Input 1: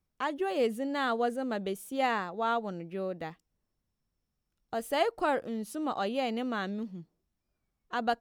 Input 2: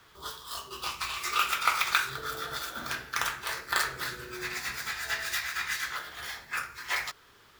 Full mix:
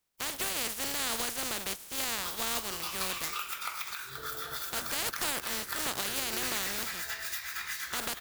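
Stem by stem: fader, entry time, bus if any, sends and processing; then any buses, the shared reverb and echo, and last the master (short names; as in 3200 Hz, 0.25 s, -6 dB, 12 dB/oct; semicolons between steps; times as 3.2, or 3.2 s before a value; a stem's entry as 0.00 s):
-0.5 dB, 0.00 s, no send, spectral contrast lowered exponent 0.19
-2.5 dB, 2.00 s, no send, high shelf 8400 Hz +12 dB; compressor 6:1, threshold -31 dBFS, peak gain reduction 13 dB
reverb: off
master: limiter -19 dBFS, peak gain reduction 10 dB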